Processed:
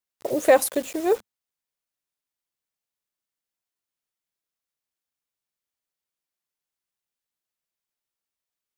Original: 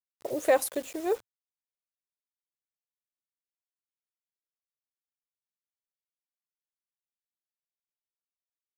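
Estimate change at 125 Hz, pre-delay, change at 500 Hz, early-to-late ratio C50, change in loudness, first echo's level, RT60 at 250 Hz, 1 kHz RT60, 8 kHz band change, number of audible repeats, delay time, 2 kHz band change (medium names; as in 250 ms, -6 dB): no reading, no reverb, +6.5 dB, no reverb, +6.5 dB, no echo, no reverb, no reverb, +6.5 dB, no echo, no echo, +6.5 dB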